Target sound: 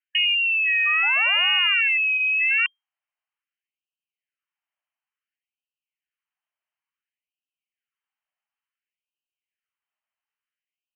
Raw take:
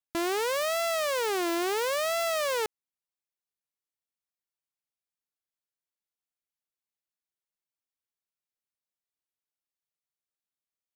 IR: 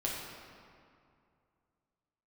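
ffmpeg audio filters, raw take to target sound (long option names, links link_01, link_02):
-af "lowpass=frequency=2700:width_type=q:width=0.5098,lowpass=frequency=2700:width_type=q:width=0.6013,lowpass=frequency=2700:width_type=q:width=0.9,lowpass=frequency=2700:width_type=q:width=2.563,afreqshift=-3200,afftfilt=real='re*gte(b*sr/1024,550*pow(2500/550,0.5+0.5*sin(2*PI*0.57*pts/sr)))':imag='im*gte(b*sr/1024,550*pow(2500/550,0.5+0.5*sin(2*PI*0.57*pts/sr)))':win_size=1024:overlap=0.75,volume=9dB"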